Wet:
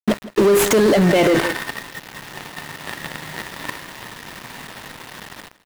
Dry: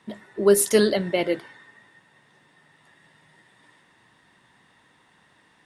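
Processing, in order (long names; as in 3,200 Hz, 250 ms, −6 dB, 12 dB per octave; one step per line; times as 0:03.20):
running median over 9 samples
automatic gain control gain up to 15 dB
in parallel at −7 dB: fuzz pedal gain 39 dB, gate −36 dBFS
on the sum: bit reduction 7 bits
soft clipping −4.5 dBFS, distortion −19 dB
on a send: single-tap delay 163 ms −18.5 dB
on the sum: boost into a limiter +16 dB
level −8 dB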